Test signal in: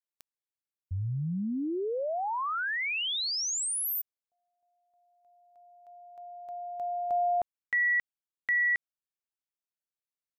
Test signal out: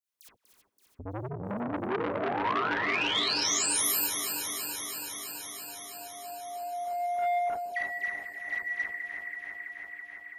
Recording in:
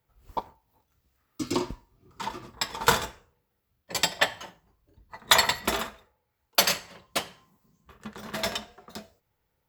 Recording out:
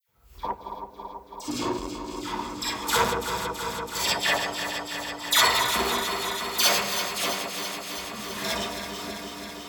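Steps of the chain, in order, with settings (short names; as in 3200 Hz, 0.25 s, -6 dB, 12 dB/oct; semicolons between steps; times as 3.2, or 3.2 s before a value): regenerating reverse delay 0.165 s, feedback 85%, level -9 dB; non-linear reverb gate 80 ms rising, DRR -5.5 dB; in parallel at -2.5 dB: compressor, threshold -38 dBFS; on the sum: dispersion lows, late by 83 ms, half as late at 1700 Hz; on a send: narrowing echo 0.16 s, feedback 84%, band-pass 320 Hz, level -9 dB; on the sum: core saturation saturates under 1700 Hz; gain -5 dB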